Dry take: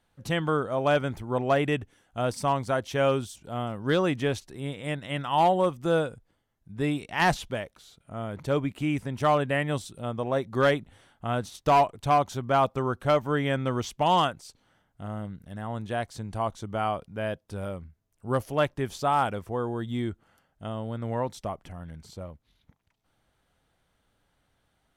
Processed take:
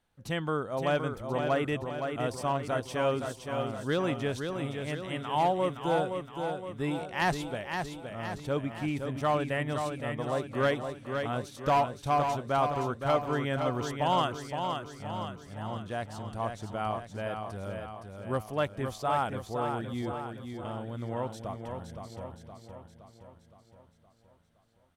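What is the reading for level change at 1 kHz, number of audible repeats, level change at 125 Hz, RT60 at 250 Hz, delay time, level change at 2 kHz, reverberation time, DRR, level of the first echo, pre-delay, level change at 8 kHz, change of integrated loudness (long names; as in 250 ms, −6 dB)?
−3.5 dB, 6, −4.0 dB, no reverb audible, 517 ms, −3.5 dB, no reverb audible, no reverb audible, −6.0 dB, no reverb audible, −3.5 dB, −4.0 dB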